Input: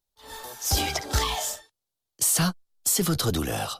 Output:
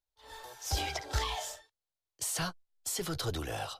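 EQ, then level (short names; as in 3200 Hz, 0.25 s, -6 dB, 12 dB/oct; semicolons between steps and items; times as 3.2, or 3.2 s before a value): bell 210 Hz -12.5 dB 0.93 oct; high shelf 7300 Hz -11.5 dB; notch 1200 Hz, Q 13; -6.0 dB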